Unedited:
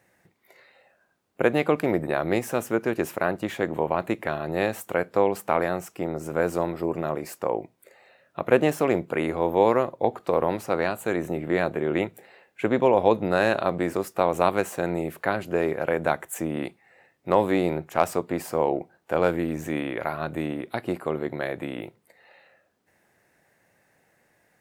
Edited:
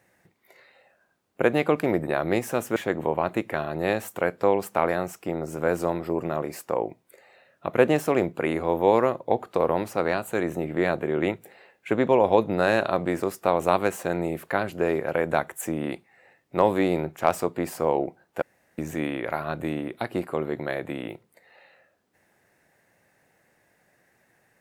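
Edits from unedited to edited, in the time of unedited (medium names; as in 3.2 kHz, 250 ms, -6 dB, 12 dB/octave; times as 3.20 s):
2.76–3.49 s: delete
19.15–19.51 s: room tone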